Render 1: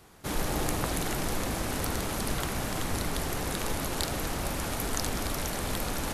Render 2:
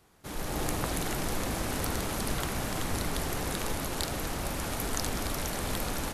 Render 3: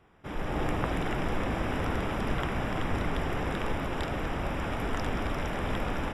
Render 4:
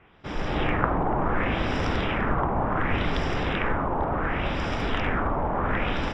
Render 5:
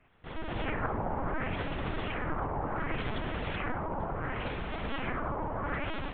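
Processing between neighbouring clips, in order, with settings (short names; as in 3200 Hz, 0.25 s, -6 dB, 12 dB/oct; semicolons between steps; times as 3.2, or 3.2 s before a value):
AGC gain up to 7.5 dB; gain -8 dB
polynomial smoothing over 25 samples; gain +2.5 dB
LFO low-pass sine 0.69 Hz 910–5300 Hz; gain +4 dB
LPC vocoder at 8 kHz pitch kept; gain -8.5 dB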